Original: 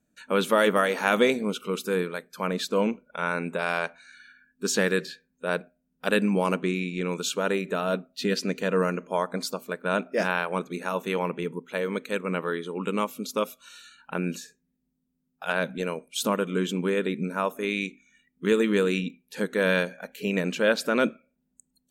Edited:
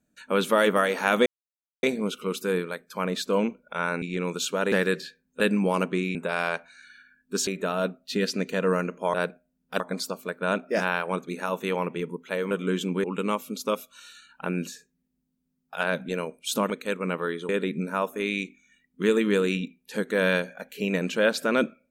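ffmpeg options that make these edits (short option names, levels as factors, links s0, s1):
-filter_complex "[0:a]asplit=13[s0][s1][s2][s3][s4][s5][s6][s7][s8][s9][s10][s11][s12];[s0]atrim=end=1.26,asetpts=PTS-STARTPTS,afade=t=out:st=1.256:d=0.004:c=hsin,apad=pad_dur=0.57[s13];[s1]atrim=start=1.26:end=3.452,asetpts=PTS-STARTPTS,afade=t=in:d=0.004:c=hsin[s14];[s2]atrim=start=6.858:end=7.562[s15];[s3]atrim=start=4.768:end=5.452[s16];[s4]atrim=start=6.108:end=6.862[s17];[s5]atrim=start=3.448:end=4.772[s18];[s6]atrim=start=7.558:end=9.232[s19];[s7]atrim=start=5.448:end=6.112[s20];[s8]atrim=start=9.228:end=11.942[s21];[s9]atrim=start=16.388:end=16.922[s22];[s10]atrim=start=12.728:end=16.392[s23];[s11]atrim=start=11.938:end=12.732[s24];[s12]atrim=start=16.918[s25];[s13][s14]concat=n=2:v=0:a=1[s26];[s26][s15]acrossfade=d=0.004:c1=hsin:c2=hsin[s27];[s27][s16]acrossfade=d=0.004:c1=hsin:c2=hsin[s28];[s28][s17]acrossfade=d=0.004:c1=hsin:c2=hsin[s29];[s29][s18]acrossfade=d=0.004:c1=hsin:c2=hsin[s30];[s30][s19]acrossfade=d=0.004:c1=hsin:c2=hsin[s31];[s31][s20]acrossfade=d=0.004:c1=hsin:c2=hsin[s32];[s32][s21]acrossfade=d=0.004:c1=hsin:c2=hsin[s33];[s33][s22]acrossfade=d=0.004:c1=hsin:c2=hsin[s34];[s34][s23]acrossfade=d=0.004:c1=hsin:c2=hsin[s35];[s35][s24]acrossfade=d=0.004:c1=hsin:c2=hsin[s36];[s36][s25]acrossfade=d=0.004:c1=hsin:c2=hsin"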